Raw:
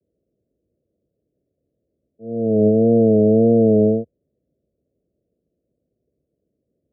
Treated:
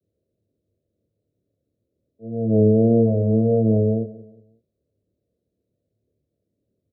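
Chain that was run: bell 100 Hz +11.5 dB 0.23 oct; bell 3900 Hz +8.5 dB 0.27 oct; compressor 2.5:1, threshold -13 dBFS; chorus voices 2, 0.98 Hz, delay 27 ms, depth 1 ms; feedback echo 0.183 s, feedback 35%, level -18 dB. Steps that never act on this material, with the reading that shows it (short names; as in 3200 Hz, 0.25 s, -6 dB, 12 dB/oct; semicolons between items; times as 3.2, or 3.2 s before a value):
bell 3900 Hz: input band ends at 720 Hz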